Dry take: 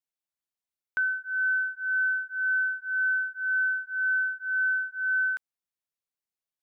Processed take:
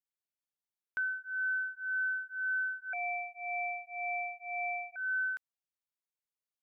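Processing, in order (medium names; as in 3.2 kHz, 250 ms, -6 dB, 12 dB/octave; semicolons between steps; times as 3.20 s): 2.93–4.96 s: ring modulator 810 Hz; trim -7 dB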